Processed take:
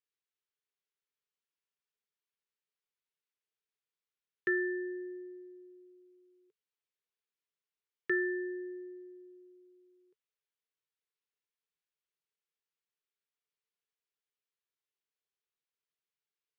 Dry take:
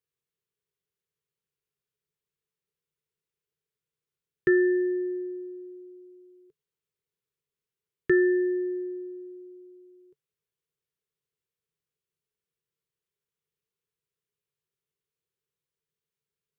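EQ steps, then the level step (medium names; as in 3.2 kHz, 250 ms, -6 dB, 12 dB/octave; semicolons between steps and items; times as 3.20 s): high-pass 1.4 kHz 6 dB/octave; distance through air 120 m; 0.0 dB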